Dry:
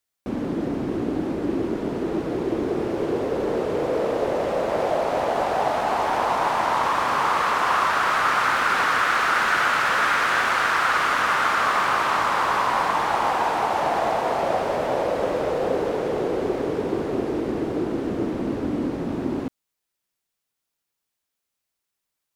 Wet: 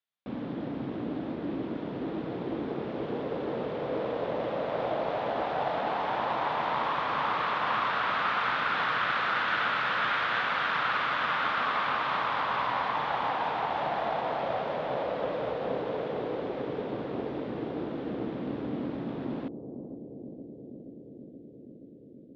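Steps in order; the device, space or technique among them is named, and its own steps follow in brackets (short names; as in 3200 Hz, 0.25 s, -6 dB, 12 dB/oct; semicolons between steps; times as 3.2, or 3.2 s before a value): analogue delay pedal into a guitar amplifier (analogue delay 0.476 s, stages 2048, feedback 80%, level -10 dB; tube stage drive 11 dB, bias 0.5; speaker cabinet 83–4000 Hz, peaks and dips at 94 Hz -7 dB, 130 Hz +4 dB, 370 Hz -6 dB, 3500 Hz +5 dB); gain -5.5 dB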